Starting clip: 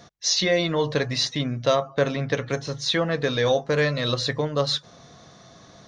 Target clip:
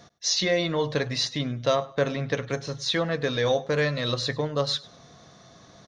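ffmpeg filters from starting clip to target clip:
ffmpeg -i in.wav -af "aecho=1:1:101|202:0.0841|0.0194,volume=-2.5dB" out.wav

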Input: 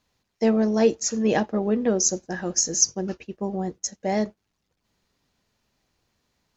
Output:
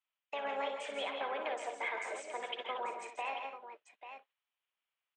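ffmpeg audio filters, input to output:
ffmpeg -i in.wav -filter_complex "[0:a]highpass=frequency=320:width=0.5412,highpass=frequency=320:width=1.3066,agate=range=-20dB:threshold=-49dB:ratio=16:detection=peak,acrossover=split=5000[link_01][link_02];[link_02]acompressor=threshold=-30dB:ratio=4:attack=1:release=60[link_03];[link_01][link_03]amix=inputs=2:normalize=0,asplit=3[link_04][link_05][link_06];[link_05]asetrate=33038,aresample=44100,atempo=1.33484,volume=-13dB[link_07];[link_06]asetrate=35002,aresample=44100,atempo=1.25992,volume=-11dB[link_08];[link_04][link_07][link_08]amix=inputs=3:normalize=0,acrossover=split=590 4500:gain=0.141 1 0.0891[link_09][link_10][link_11];[link_09][link_10][link_11]amix=inputs=3:normalize=0,acompressor=threshold=-32dB:ratio=6,alimiter=level_in=7.5dB:limit=-24dB:level=0:latency=1:release=164,volume=-7.5dB,highshelf=frequency=3200:width_type=q:width=3:gain=-10,asetrate=56007,aresample=44100,asplit=2[link_12][link_13];[link_13]aecho=0:1:58|135|157|168|236|840:0.376|0.299|0.335|0.299|0.188|0.299[link_14];[link_12][link_14]amix=inputs=2:normalize=0,volume=1dB" out.wav

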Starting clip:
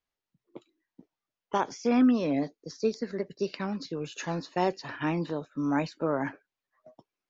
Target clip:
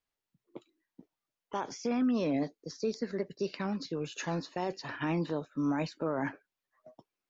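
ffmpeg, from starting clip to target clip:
ffmpeg -i in.wav -af "alimiter=limit=-22dB:level=0:latency=1:release=15,volume=-1dB" out.wav

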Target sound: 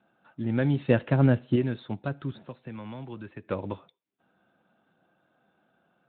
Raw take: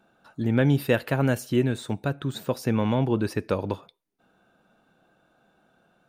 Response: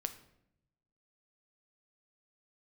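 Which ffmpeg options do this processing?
-filter_complex "[0:a]asettb=1/sr,asplit=3[link_01][link_02][link_03];[link_01]atrim=end=0.884[link_04];[link_02]atrim=start=0.88:end=1.56,asetpts=PTS-STARTPTS,afade=type=in:duration=0.004:curve=qsin,afade=type=out:start_time=0.676:duration=0.004:curve=qsin,lowshelf=frequency=480:gain=8.5[link_05];[link_03]atrim=start=1.556[link_06];[link_04][link_05]acrossfade=duration=0.004:curve1=hsin:curve2=qsin[link_07];[link_07][link_06]acrossfade=duration=0.004:curve1=qsin:curve2=hsin,bandreject=frequency=440:width=12,asettb=1/sr,asplit=3[link_08][link_09][link_10];[link_08]atrim=end=2.314[link_11];[link_09]atrim=start=2.31:end=3.48,asetpts=PTS-STARTPTS,afade=type=in:duration=0.004:curve=qsin,afade=type=out:start_time=1.166:duration=0.004:curve=qsin,acrossover=split=220|1100[link_12][link_13][link_14];[link_12]acompressor=threshold=-39dB:ratio=4[link_15];[link_13]acompressor=threshold=-40dB:ratio=4[link_16];[link_14]acompressor=threshold=-45dB:ratio=4[link_17];[link_15][link_16][link_17]amix=inputs=3:normalize=0[link_18];[link_10]atrim=start=3.476[link_19];[link_11][link_18]acrossfade=duration=0.004:curve1=hsin:curve2=qsin[link_20];[link_20][link_19]acrossfade=duration=0.004:curve1=qsin:curve2=hsin,volume=-4.5dB" -ar 8000 -c:a libspeex -b:a 15k

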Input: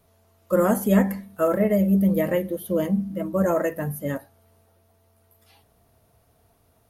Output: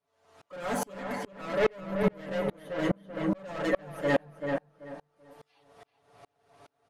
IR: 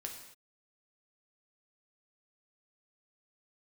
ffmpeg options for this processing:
-filter_complex "[0:a]lowpass=frequency=9300:width=0.5412,lowpass=frequency=9300:width=1.3066,asplit=2[link_01][link_02];[link_02]highpass=frequency=720:poles=1,volume=28dB,asoftclip=type=tanh:threshold=-8dB[link_03];[link_01][link_03]amix=inputs=2:normalize=0,lowpass=frequency=2800:poles=1,volume=-6dB,aecho=1:1:7:0.77,asplit=2[link_04][link_05];[link_05]adelay=385,lowpass=frequency=2500:poles=1,volume=-3dB,asplit=2[link_06][link_07];[link_07]adelay=385,lowpass=frequency=2500:poles=1,volume=0.32,asplit=2[link_08][link_09];[link_09]adelay=385,lowpass=frequency=2500:poles=1,volume=0.32,asplit=2[link_10][link_11];[link_11]adelay=385,lowpass=frequency=2500:poles=1,volume=0.32[link_12];[link_04][link_06][link_08][link_10][link_12]amix=inputs=5:normalize=0,aeval=exprs='val(0)*pow(10,-34*if(lt(mod(-2.4*n/s,1),2*abs(-2.4)/1000),1-mod(-2.4*n/s,1)/(2*abs(-2.4)/1000),(mod(-2.4*n/s,1)-2*abs(-2.4)/1000)/(1-2*abs(-2.4)/1000))/20)':channel_layout=same,volume=-7dB"

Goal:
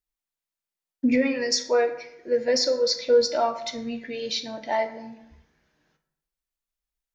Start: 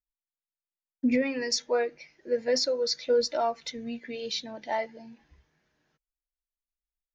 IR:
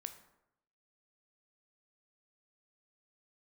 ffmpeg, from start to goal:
-filter_complex "[1:a]atrim=start_sample=2205[link_01];[0:a][link_01]afir=irnorm=-1:irlink=0,volume=8dB"

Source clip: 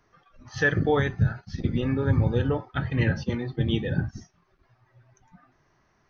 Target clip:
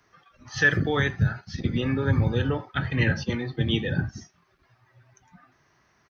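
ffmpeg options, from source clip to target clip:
ffmpeg -i in.wav -filter_complex "[0:a]highpass=54,acrossover=split=370|1300[link_01][link_02][link_03];[link_02]alimiter=level_in=2.5dB:limit=-24dB:level=0:latency=1,volume=-2.5dB[link_04];[link_03]acontrast=39[link_05];[link_01][link_04][link_05]amix=inputs=3:normalize=0,asplit=2[link_06][link_07];[link_07]adelay=80,highpass=300,lowpass=3400,asoftclip=type=hard:threshold=-17dB,volume=-22dB[link_08];[link_06][link_08]amix=inputs=2:normalize=0" out.wav

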